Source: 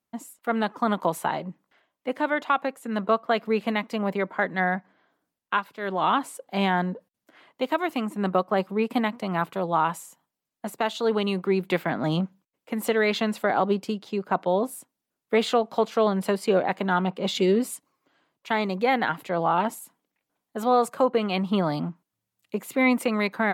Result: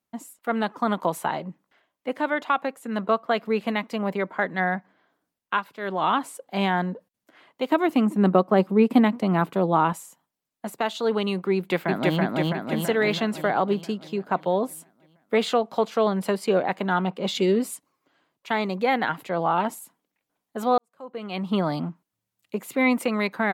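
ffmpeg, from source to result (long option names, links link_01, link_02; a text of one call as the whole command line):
ffmpeg -i in.wav -filter_complex "[0:a]asettb=1/sr,asplit=3[link_01][link_02][link_03];[link_01]atrim=end=7.704[link_04];[link_02]atrim=start=7.7:end=9.93,asetpts=PTS-STARTPTS,afade=type=in:duration=0.004:curve=qsin,afade=type=out:start_time=2.226:duration=0.004:curve=qsin,equalizer=frequency=250:width_type=o:width=2.2:gain=8.5[link_05];[link_03]atrim=start=9.926[link_06];[link_04][link_05]acrossfade=duration=0.004:curve1=hsin:curve2=qsin[link_07];[link_07][link_06]acrossfade=duration=0.004:curve1=qsin:curve2=hsin,asplit=2[link_08][link_09];[link_09]afade=type=in:start_time=11.55:duration=0.01,afade=type=out:start_time=12.19:duration=0.01,aecho=0:1:330|660|990|1320|1650|1980|2310|2640|2970|3300:1|0.6|0.36|0.216|0.1296|0.07776|0.046656|0.0279936|0.0167962|0.0100777[link_10];[link_08][link_10]amix=inputs=2:normalize=0,asplit=2[link_11][link_12];[link_11]atrim=end=20.78,asetpts=PTS-STARTPTS,afade=type=out:start_time=20.776:duration=0.004:curve=hsin[link_13];[link_12]atrim=start=20.78,asetpts=PTS-STARTPTS,afade=type=in:duration=0.75:curve=qua[link_14];[link_13][link_14]concat=n=2:v=0:a=1" out.wav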